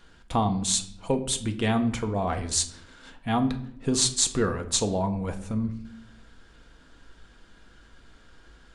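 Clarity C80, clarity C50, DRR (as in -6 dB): 16.0 dB, 12.5 dB, 6.0 dB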